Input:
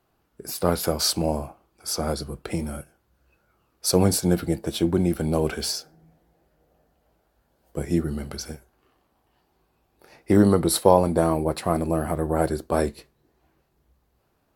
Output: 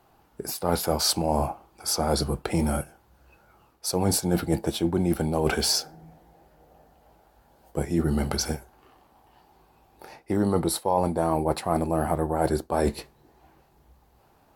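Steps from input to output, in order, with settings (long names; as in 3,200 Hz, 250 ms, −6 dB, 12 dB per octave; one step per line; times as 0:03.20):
parametric band 840 Hz +8 dB 0.46 octaves
reversed playback
downward compressor 8 to 1, threshold −27 dBFS, peak gain reduction 19.5 dB
reversed playback
level +7 dB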